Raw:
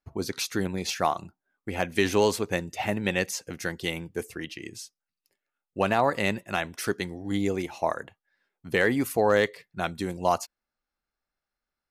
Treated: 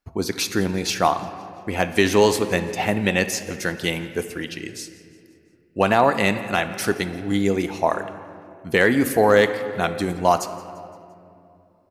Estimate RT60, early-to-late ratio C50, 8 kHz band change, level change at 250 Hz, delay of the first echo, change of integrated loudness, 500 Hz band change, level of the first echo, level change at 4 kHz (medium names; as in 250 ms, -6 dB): 2.7 s, 11.0 dB, +6.0 dB, +7.0 dB, 172 ms, +6.5 dB, +6.5 dB, -21.0 dB, +6.5 dB